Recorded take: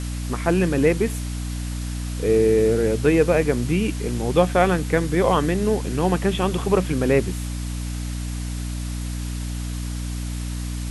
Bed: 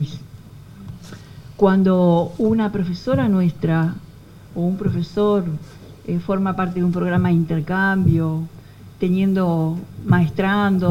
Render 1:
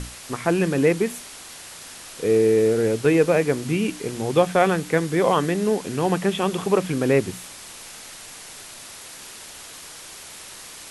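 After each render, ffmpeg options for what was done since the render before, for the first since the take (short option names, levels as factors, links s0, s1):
-af "bandreject=f=60:t=h:w=6,bandreject=f=120:t=h:w=6,bandreject=f=180:t=h:w=6,bandreject=f=240:t=h:w=6,bandreject=f=300:t=h:w=6"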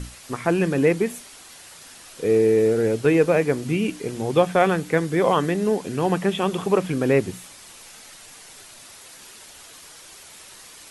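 -af "afftdn=nr=6:nf=-41"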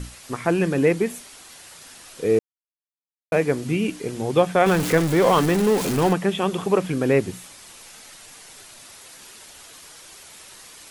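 -filter_complex "[0:a]asettb=1/sr,asplit=3[s0][s1][s2];[s0]atrim=end=4.664[s3];[s1]atrim=start=4.66:end=6.13,asetpts=PTS-STARTPTS,afade=t=in:d=0.004:c=qsin,afade=t=out:st=1.466:d=0.004:c=qsin,aeval=exprs='val(0)+0.5*0.0841*sgn(val(0))':c=same[s4];[s2]atrim=start=6.126[s5];[s3][s4]acrossfade=d=0.004:c1=hsin:c2=qsin[s6];[s6][s5]acrossfade=d=0.004:c1=qsin:c2=hsin,asplit=3[s7][s8][s9];[s7]atrim=end=2.39,asetpts=PTS-STARTPTS,afade=t=out:st=2.386:d=0.004:c=hsin[s10];[s8]atrim=start=2.39:end=3.32,asetpts=PTS-STARTPTS,volume=0[s11];[s9]atrim=start=3.32,asetpts=PTS-STARTPTS,afade=t=in:d=0.004:c=hsin[s12];[s10][s11][s12]concat=n=3:v=0:a=1"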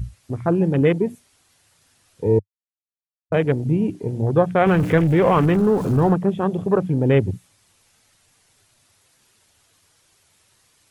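-af "afwtdn=0.0447,equalizer=f=100:t=o:w=1.1:g=14"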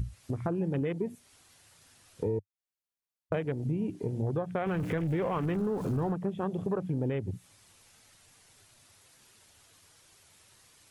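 -af "alimiter=limit=0.299:level=0:latency=1:release=236,acompressor=threshold=0.0251:ratio=3"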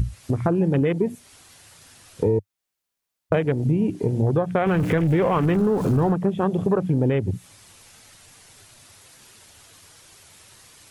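-af "volume=3.35"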